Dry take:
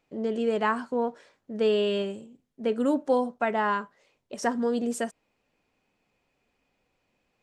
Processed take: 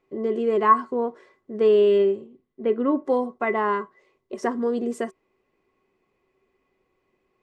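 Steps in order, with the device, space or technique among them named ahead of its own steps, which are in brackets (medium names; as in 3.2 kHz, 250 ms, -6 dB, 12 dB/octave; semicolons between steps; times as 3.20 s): inside a helmet (treble shelf 3 kHz -8.5 dB; small resonant body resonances 380/1100/2000 Hz, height 18 dB, ringing for 95 ms); 1.98–3.03 s: low-pass 6.9 kHz -> 2.8 kHz 24 dB/octave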